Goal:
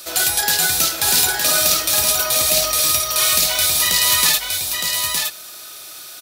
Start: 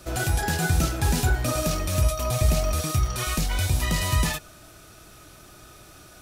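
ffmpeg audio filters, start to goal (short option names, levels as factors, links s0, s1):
-filter_complex "[0:a]aemphasis=mode=production:type=riaa,bandreject=f=60:t=h:w=6,bandreject=f=120:t=h:w=6,aecho=1:1:914:0.596,asettb=1/sr,asplit=3[s0][s1][s2];[s0]atrim=end=1.994[s3];[s1]atrim=start=1.99:end=2.49,asetpts=PTS-STARTPTS,afade=t=in:d=0.004:c=qsin,afade=t=out:st=0.496:d=0.004:c=qsin,acrusher=bits=7:dc=4:mix=0:aa=0.000001[s4];[s2]atrim=start=2.486[s5];[s3][s4]acrossfade=d=0.004:c1=hsin:c2=qsin[s6];[s6][s5]acrossfade=d=0.004:c1=qsin:c2=hsin,equalizer=f=500:t=o:w=1:g=4,equalizer=f=1000:t=o:w=1:g=4,equalizer=f=2000:t=o:w=1:g=4,equalizer=f=4000:t=o:w=1:g=10,volume=0.891"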